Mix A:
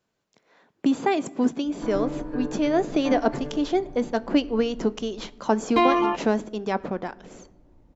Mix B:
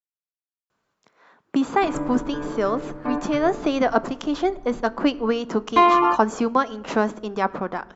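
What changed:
speech: entry +0.70 s
master: add parametric band 1,200 Hz +9.5 dB 1 octave

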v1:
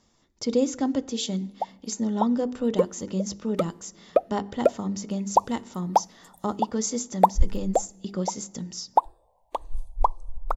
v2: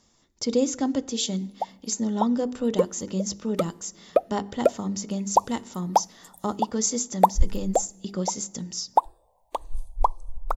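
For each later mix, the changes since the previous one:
master: add high-shelf EQ 5,300 Hz +7.5 dB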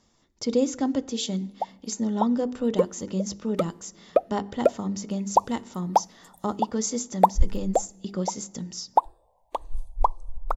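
master: add high-shelf EQ 5,300 Hz −7.5 dB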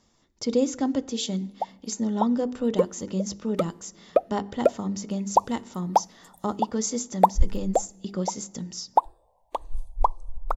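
nothing changed

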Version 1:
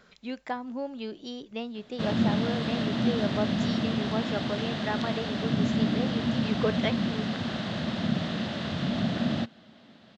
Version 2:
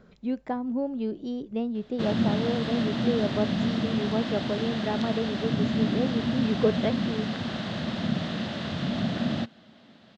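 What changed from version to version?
speech: add tilt shelving filter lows +9.5 dB, about 830 Hz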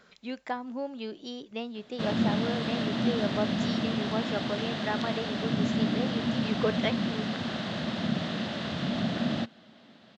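speech: add tilt shelving filter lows −9.5 dB, about 830 Hz
master: add low-shelf EQ 93 Hz −10 dB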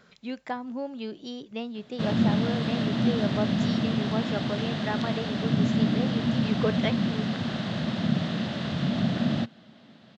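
master: add parametric band 130 Hz +7.5 dB 1.4 octaves

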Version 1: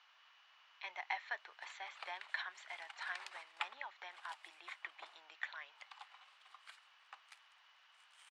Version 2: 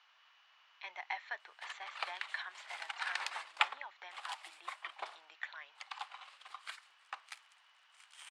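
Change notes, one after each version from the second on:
background +11.0 dB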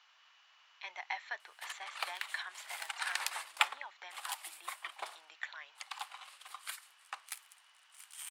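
master: remove high-frequency loss of the air 110 metres

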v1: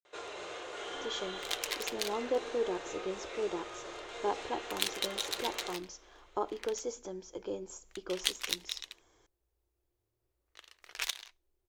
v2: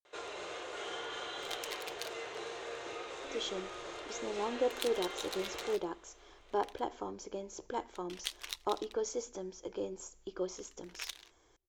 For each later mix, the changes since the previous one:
speech: entry +2.30 s
second sound −7.5 dB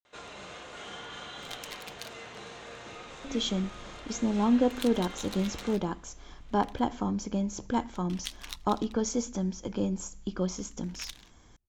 speech +7.5 dB
master: add low shelf with overshoot 290 Hz +8.5 dB, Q 3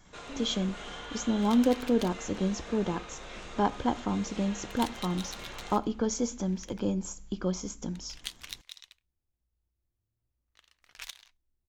speech: entry −2.95 s

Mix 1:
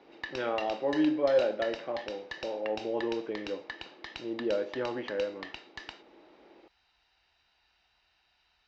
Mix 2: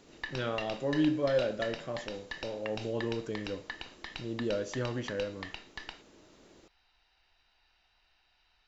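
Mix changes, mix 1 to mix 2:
speech: remove loudspeaker in its box 270–3,000 Hz, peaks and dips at 340 Hz +5 dB, 530 Hz +3 dB, 820 Hz +9 dB, 2,200 Hz +4 dB
master: remove high-pass filter 52 Hz

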